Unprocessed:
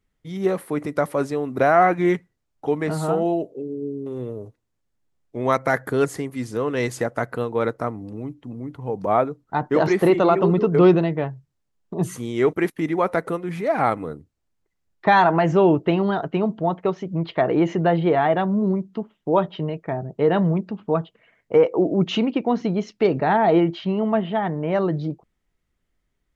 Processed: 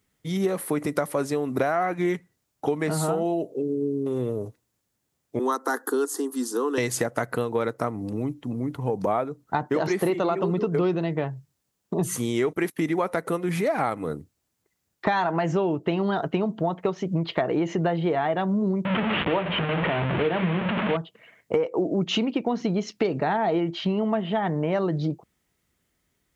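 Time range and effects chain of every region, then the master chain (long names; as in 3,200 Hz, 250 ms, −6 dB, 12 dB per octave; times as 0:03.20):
0:05.39–0:06.78: Chebyshev high-pass filter 230 Hz, order 5 + phaser with its sweep stopped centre 600 Hz, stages 6
0:18.85–0:20.97: linear delta modulator 16 kbit/s, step −18 dBFS + mains-hum notches 50/100/150/200/250/300/350/400/450/500 Hz
whole clip: high-pass filter 78 Hz; high-shelf EQ 5,400 Hz +10 dB; downward compressor 6 to 1, threshold −26 dBFS; level +4.5 dB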